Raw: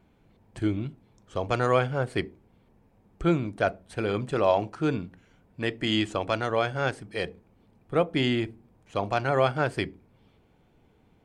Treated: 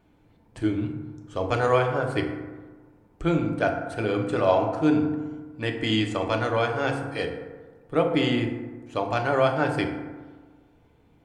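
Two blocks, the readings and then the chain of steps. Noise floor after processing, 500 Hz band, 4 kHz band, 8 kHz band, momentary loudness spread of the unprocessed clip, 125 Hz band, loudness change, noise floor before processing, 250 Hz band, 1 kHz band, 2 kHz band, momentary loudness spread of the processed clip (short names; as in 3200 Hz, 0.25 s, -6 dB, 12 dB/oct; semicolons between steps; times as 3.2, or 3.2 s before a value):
-60 dBFS, +2.5 dB, +0.5 dB, n/a, 11 LU, +1.5 dB, +2.0 dB, -63 dBFS, +4.0 dB, +2.5 dB, +2.0 dB, 14 LU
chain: notches 50/100/150/200/250 Hz; FDN reverb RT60 1.4 s, low-frequency decay 1.05×, high-frequency decay 0.4×, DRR 2.5 dB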